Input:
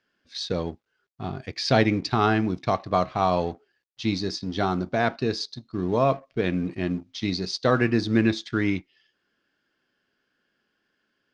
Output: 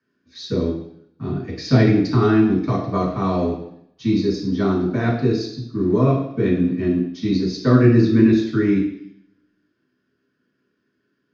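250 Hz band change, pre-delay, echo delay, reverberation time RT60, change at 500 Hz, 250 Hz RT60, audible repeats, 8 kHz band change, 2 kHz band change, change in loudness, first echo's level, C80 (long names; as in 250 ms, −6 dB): +9.0 dB, 3 ms, no echo audible, 0.70 s, +4.5 dB, 0.80 s, no echo audible, can't be measured, −1.0 dB, +6.5 dB, no echo audible, 8.5 dB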